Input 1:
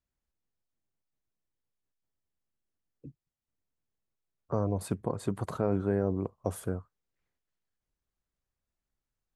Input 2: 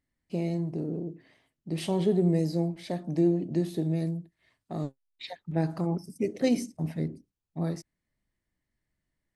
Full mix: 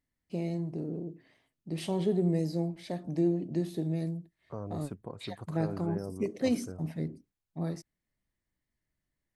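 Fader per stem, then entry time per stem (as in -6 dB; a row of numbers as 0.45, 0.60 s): -10.0, -3.5 dB; 0.00, 0.00 s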